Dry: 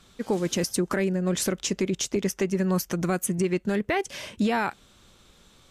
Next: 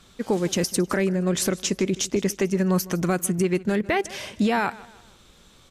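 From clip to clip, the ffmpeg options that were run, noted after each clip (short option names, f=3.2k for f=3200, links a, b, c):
-af "aecho=1:1:156|312|468:0.1|0.041|0.0168,volume=2.5dB"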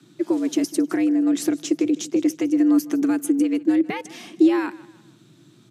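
-af "lowshelf=f=300:t=q:w=3:g=7.5,afreqshift=110,volume=-5.5dB"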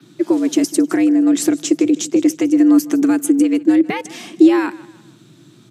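-af "adynamicequalizer=threshold=0.00251:dfrequency=7700:dqfactor=3.7:tfrequency=7700:tqfactor=3.7:attack=5:release=100:ratio=0.375:range=3:mode=boostabove:tftype=bell,volume=6dB"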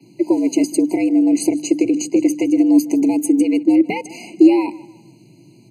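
-af "bandreject=f=50:t=h:w=6,bandreject=f=100:t=h:w=6,bandreject=f=150:t=h:w=6,bandreject=f=200:t=h:w=6,bandreject=f=250:t=h:w=6,bandreject=f=300:t=h:w=6,afftfilt=real='re*eq(mod(floor(b*sr/1024/1000),2),0)':imag='im*eq(mod(floor(b*sr/1024/1000),2),0)':win_size=1024:overlap=0.75"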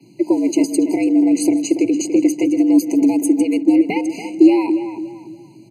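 -filter_complex "[0:a]asplit=2[a][b];[b]adelay=286,lowpass=f=2.8k:p=1,volume=-9.5dB,asplit=2[c][d];[d]adelay=286,lowpass=f=2.8k:p=1,volume=0.35,asplit=2[e][f];[f]adelay=286,lowpass=f=2.8k:p=1,volume=0.35,asplit=2[g][h];[h]adelay=286,lowpass=f=2.8k:p=1,volume=0.35[i];[a][c][e][g][i]amix=inputs=5:normalize=0"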